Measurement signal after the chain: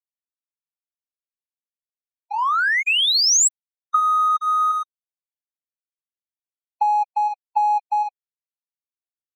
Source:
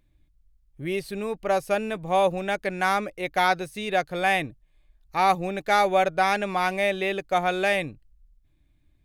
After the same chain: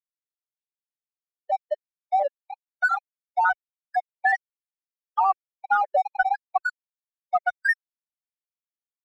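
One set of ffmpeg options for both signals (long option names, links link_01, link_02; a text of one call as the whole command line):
ffmpeg -i in.wav -af "bandreject=frequency=2300:width=9.4,aecho=1:1:54|67|243|349|525|891:0.224|0.119|0.2|0.447|0.178|0.106,dynaudnorm=framelen=460:gausssize=5:maxgain=7.5dB,highpass=1000,afftfilt=real='re*gte(hypot(re,im),0.708)':imag='im*gte(hypot(re,im),0.708)':win_size=1024:overlap=0.75,highshelf=frequency=3400:gain=11.5,acompressor=threshold=-24dB:ratio=6,aeval=exprs='sgn(val(0))*max(abs(val(0))-0.00447,0)':channel_layout=same,afftdn=noise_reduction=21:noise_floor=-49,adynamicequalizer=threshold=0.00501:dfrequency=6900:dqfactor=0.7:tfrequency=6900:tqfactor=0.7:attack=5:release=100:ratio=0.375:range=3.5:mode=boostabove:tftype=highshelf,volume=7dB" out.wav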